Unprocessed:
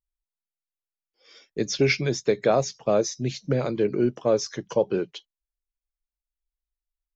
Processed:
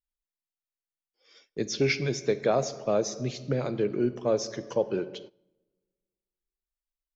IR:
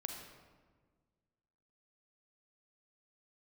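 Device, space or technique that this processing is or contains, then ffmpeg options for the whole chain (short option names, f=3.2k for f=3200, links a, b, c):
keyed gated reverb: -filter_complex "[0:a]asplit=3[a][b][c];[1:a]atrim=start_sample=2205[d];[b][d]afir=irnorm=-1:irlink=0[e];[c]apad=whole_len=315691[f];[e][f]sidechaingate=range=-17dB:threshold=-50dB:ratio=16:detection=peak,volume=-5dB[g];[a][g]amix=inputs=2:normalize=0,volume=-7dB"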